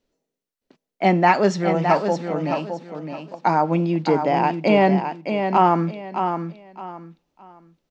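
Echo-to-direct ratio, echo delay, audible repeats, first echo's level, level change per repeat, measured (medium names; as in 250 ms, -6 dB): -6.5 dB, 615 ms, 3, -7.0 dB, -11.5 dB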